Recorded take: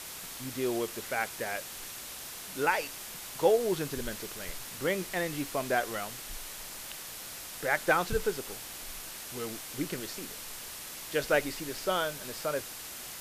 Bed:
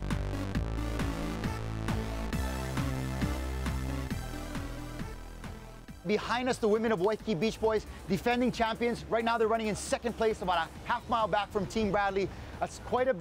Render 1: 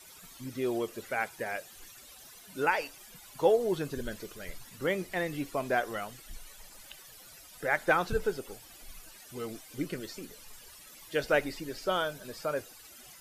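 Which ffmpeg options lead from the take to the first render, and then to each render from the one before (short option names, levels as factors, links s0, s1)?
-af "afftdn=nr=15:nf=-43"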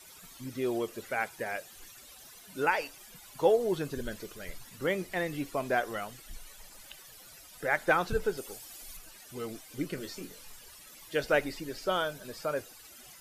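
-filter_complex "[0:a]asettb=1/sr,asplit=3[s0][s1][s2];[s0]atrim=end=8.374[s3];[s1]atrim=start=8.37:end=8.97,asetpts=PTS-STARTPTS,afade=t=in:d=0.004:c=qsin,afade=t=out:st=0.596:d=0.004:c=qsin,bass=f=250:g=-4,treble=f=4000:g=6[s4];[s2]atrim=start=8.966[s5];[s3][s4]acrossfade=d=0.004:c1=hsin:c2=qsin[s6];[s6][s5]acrossfade=d=0.004:c1=qsin:c2=hsin,asettb=1/sr,asplit=3[s7][s8][s9];[s7]atrim=end=9.954[s10];[s8]atrim=start=9.95:end=10.53,asetpts=PTS-STARTPTS,afade=t=in:d=0.004:c=qsin,afade=t=out:st=0.576:d=0.004:c=qsin,asplit=2[s11][s12];[s12]adelay=22,volume=0.473[s13];[s11][s13]amix=inputs=2:normalize=0,atrim=end_sample=25578[s14];[s9]atrim=start=10.526[s15];[s10][s14]acrossfade=d=0.004:c1=hsin:c2=qsin[s16];[s16][s15]acrossfade=d=0.004:c1=qsin:c2=hsin"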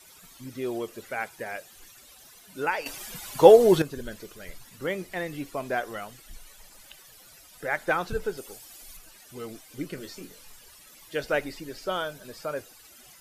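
-filter_complex "[0:a]asplit=3[s0][s1][s2];[s0]atrim=end=2.862[s3];[s1]atrim=start=2.858:end=3.822,asetpts=PTS-STARTPTS,volume=3.76[s4];[s2]atrim=start=3.818[s5];[s3][s4]acrossfade=d=0.004:c1=hsin:c2=hsin[s6];[s6][s5]acrossfade=d=0.004:c1=hsin:c2=hsin"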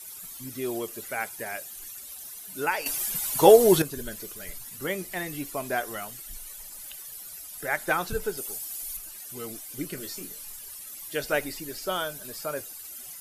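-af "equalizer=f=12000:t=o:w=1.3:g=14.5,bandreject=f=510:w=12"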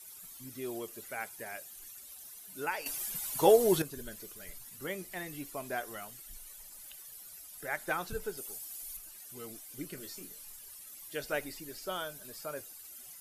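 -af "volume=0.398"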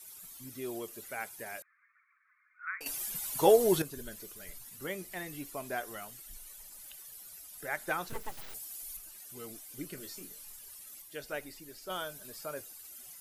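-filter_complex "[0:a]asettb=1/sr,asplit=3[s0][s1][s2];[s0]atrim=end=1.624[s3];[s1]atrim=start=1.62:end=2.81,asetpts=PTS-STARTPTS,afade=t=in:d=0.004:c=qsin,afade=t=out:st=1.186:d=0.004:c=qsin,asuperpass=centerf=1600:order=20:qfactor=1.3[s4];[s2]atrim=start=2.806[s5];[s3][s4]acrossfade=d=0.004:c1=hsin:c2=qsin[s6];[s6][s5]acrossfade=d=0.004:c1=qsin:c2=hsin,asplit=3[s7][s8][s9];[s7]afade=t=out:st=8.08:d=0.02[s10];[s8]aeval=exprs='abs(val(0))':c=same,afade=t=in:st=8.08:d=0.02,afade=t=out:st=8.53:d=0.02[s11];[s9]afade=t=in:st=8.53:d=0.02[s12];[s10][s11][s12]amix=inputs=3:normalize=0,asplit=3[s13][s14][s15];[s13]atrim=end=11.022[s16];[s14]atrim=start=11.018:end=11.902,asetpts=PTS-STARTPTS,volume=0.596[s17];[s15]atrim=start=11.898[s18];[s16][s17]acrossfade=d=0.004:c1=hsin:c2=hsin[s19];[s19][s18]acrossfade=d=0.004:c1=hsin:c2=hsin"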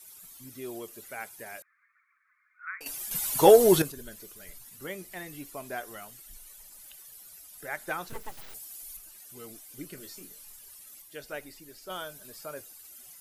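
-filter_complex "[0:a]asettb=1/sr,asplit=3[s0][s1][s2];[s0]atrim=end=3.114[s3];[s1]atrim=start=3.11:end=3.92,asetpts=PTS-STARTPTS,afade=t=in:d=0.004:c=qsin,afade=t=out:st=0.806:d=0.004:c=qsin,acontrast=77[s4];[s2]atrim=start=3.916[s5];[s3][s4]acrossfade=d=0.004:c1=hsin:c2=qsin[s6];[s6][s5]acrossfade=d=0.004:c1=qsin:c2=hsin"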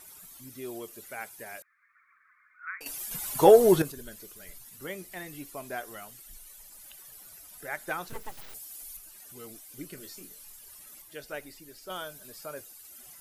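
-filter_complex "[0:a]acrossover=split=2000[s0][s1];[s0]acompressor=mode=upward:threshold=0.00178:ratio=2.5[s2];[s1]alimiter=level_in=1.33:limit=0.0631:level=0:latency=1:release=109,volume=0.75[s3];[s2][s3]amix=inputs=2:normalize=0"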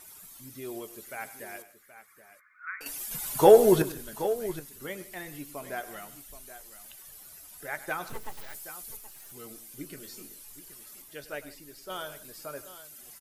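-filter_complex "[0:a]asplit=2[s0][s1];[s1]adelay=14,volume=0.2[s2];[s0][s2]amix=inputs=2:normalize=0,aecho=1:1:101|155|775:0.168|0.1|0.211"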